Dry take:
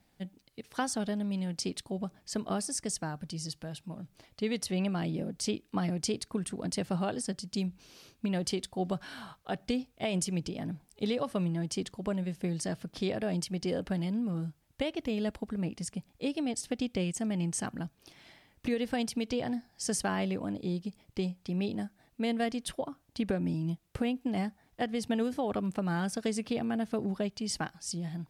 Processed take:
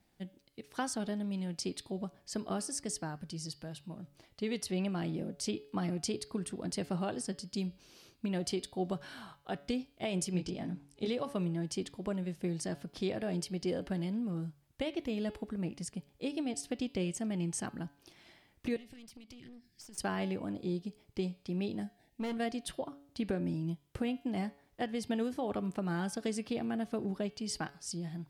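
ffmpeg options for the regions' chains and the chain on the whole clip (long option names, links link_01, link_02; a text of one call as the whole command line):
ffmpeg -i in.wav -filter_complex "[0:a]asettb=1/sr,asplit=3[link_01][link_02][link_03];[link_01]atrim=end=10.324[link_04];[link_02]atrim=start=10.32:end=11.08,asetpts=PTS-STARTPTS,afade=type=in:duration=0.004:curve=qsin,afade=type=out:start_time=0.756:duration=0.004:curve=qsin,lowpass=9400,asplit=2[link_05][link_06];[link_06]adelay=22,volume=-4.5dB[link_07];[link_05][link_07]amix=inputs=2:normalize=0,atrim=end_sample=33516[link_08];[link_03]atrim=start=11.076[link_09];[link_04][link_08]acrossfade=duration=0.004:curve1=hsin:curve2=qsin[link_10];[link_10][link_09]acrossfade=duration=0.004:curve1=qsin:curve2=hsin,asettb=1/sr,asplit=3[link_11][link_12][link_13];[link_11]atrim=end=18.764[link_14];[link_12]atrim=start=18.76:end=19.98,asetpts=PTS-STARTPTS,afade=type=in:duration=0.004:curve=qsin,afade=type=out:start_time=1.216:duration=0.004:curve=qsin,asuperstop=centerf=800:order=8:qfactor=0.52,aeval=exprs='clip(val(0),-1,0.0119)':channel_layout=same,acompressor=threshold=-45dB:ratio=12:attack=3.2:release=140:knee=1:detection=peak[link_15];[link_13]atrim=start=19.976[link_16];[link_14][link_15]acrossfade=duration=0.004:curve1=hsin:curve2=qsin[link_17];[link_17][link_16]acrossfade=duration=0.004:curve1=qsin:curve2=hsin,asettb=1/sr,asplit=3[link_18][link_19][link_20];[link_18]atrim=end=21.804[link_21];[link_19]atrim=start=21.8:end=22.38,asetpts=PTS-STARTPTS,afade=type=in:duration=0.004:curve=qsin,afade=type=out:start_time=0.576:duration=0.004:curve=qsin,asuperstop=centerf=1200:order=8:qfactor=1.7,volume=29dB,asoftclip=hard,volume=-29dB,asplit=2[link_22][link_23];[link_23]adelay=19,volume=-13dB[link_24];[link_22][link_24]amix=inputs=2:normalize=0,atrim=end_sample=25578[link_25];[link_20]atrim=start=22.376[link_26];[link_21][link_25]acrossfade=duration=0.004:curve1=hsin:curve2=qsin[link_27];[link_27][link_26]acrossfade=duration=0.004:curve1=qsin:curve2=hsin,equalizer=frequency=350:width=7:gain=5,bandreject=frequency=141.6:width_type=h:width=4,bandreject=frequency=283.2:width_type=h:width=4,bandreject=frequency=424.8:width_type=h:width=4,bandreject=frequency=566.4:width_type=h:width=4,bandreject=frequency=708:width_type=h:width=4,bandreject=frequency=849.6:width_type=h:width=4,bandreject=frequency=991.2:width_type=h:width=4,bandreject=frequency=1132.8:width_type=h:width=4,bandreject=frequency=1274.4:width_type=h:width=4,bandreject=frequency=1416:width_type=h:width=4,bandreject=frequency=1557.6:width_type=h:width=4,bandreject=frequency=1699.2:width_type=h:width=4,bandreject=frequency=1840.8:width_type=h:width=4,bandreject=frequency=1982.4:width_type=h:width=4,bandreject=frequency=2124:width_type=h:width=4,bandreject=frequency=2265.6:width_type=h:width=4,bandreject=frequency=2407.2:width_type=h:width=4,bandreject=frequency=2548.8:width_type=h:width=4,bandreject=frequency=2690.4:width_type=h:width=4,bandreject=frequency=2832:width_type=h:width=4,bandreject=frequency=2973.6:width_type=h:width=4,bandreject=frequency=3115.2:width_type=h:width=4,bandreject=frequency=3256.8:width_type=h:width=4,bandreject=frequency=3398.4:width_type=h:width=4,bandreject=frequency=3540:width_type=h:width=4,bandreject=frequency=3681.6:width_type=h:width=4,bandreject=frequency=3823.2:width_type=h:width=4,bandreject=frequency=3964.8:width_type=h:width=4,bandreject=frequency=4106.4:width_type=h:width=4,bandreject=frequency=4248:width_type=h:width=4,bandreject=frequency=4389.6:width_type=h:width=4,bandreject=frequency=4531.2:width_type=h:width=4,bandreject=frequency=4672.8:width_type=h:width=4,bandreject=frequency=4814.4:width_type=h:width=4,bandreject=frequency=4956:width_type=h:width=4,bandreject=frequency=5097.6:width_type=h:width=4,volume=-3.5dB" out.wav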